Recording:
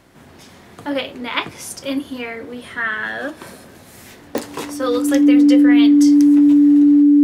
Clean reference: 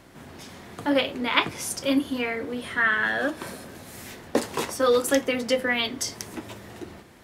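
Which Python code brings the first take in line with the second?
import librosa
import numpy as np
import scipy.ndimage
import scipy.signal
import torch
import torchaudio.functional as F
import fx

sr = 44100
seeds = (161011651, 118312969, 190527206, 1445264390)

y = fx.fix_declick_ar(x, sr, threshold=10.0)
y = fx.notch(y, sr, hz=290.0, q=30.0)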